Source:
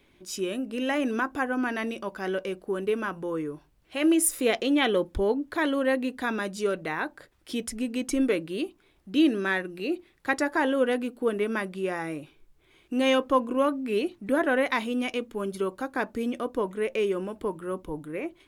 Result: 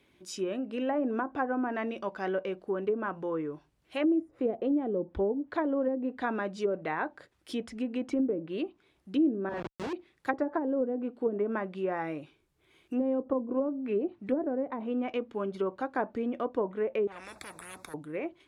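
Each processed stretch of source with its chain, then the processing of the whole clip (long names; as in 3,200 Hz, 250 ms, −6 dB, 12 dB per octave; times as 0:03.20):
0:09.49–0:09.93: high-shelf EQ 11,000 Hz −11 dB + downward compressor 1.5 to 1, threshold −31 dBFS + comparator with hysteresis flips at −33 dBFS
0:17.07–0:17.94: Butterworth band-reject 3,000 Hz, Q 3 + tube saturation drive 22 dB, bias 0.45 + every bin compressed towards the loudest bin 10 to 1
whole clip: high-pass filter 66 Hz; treble cut that deepens with the level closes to 380 Hz, closed at −20.5 dBFS; dynamic equaliser 730 Hz, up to +5 dB, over −43 dBFS, Q 1.3; level −3.5 dB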